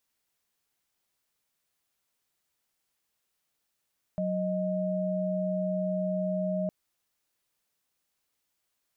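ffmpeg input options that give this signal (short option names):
-f lavfi -i "aevalsrc='0.0335*(sin(2*PI*185*t)+sin(2*PI*622.25*t))':d=2.51:s=44100"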